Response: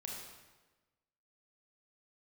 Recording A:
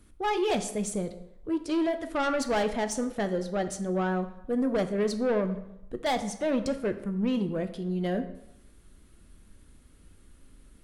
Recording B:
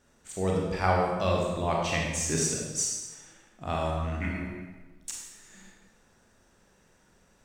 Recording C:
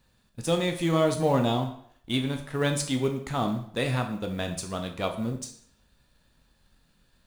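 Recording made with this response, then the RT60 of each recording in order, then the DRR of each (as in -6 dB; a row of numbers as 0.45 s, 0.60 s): B; 0.85 s, 1.2 s, 0.60 s; 8.5 dB, -2.0 dB, 4.0 dB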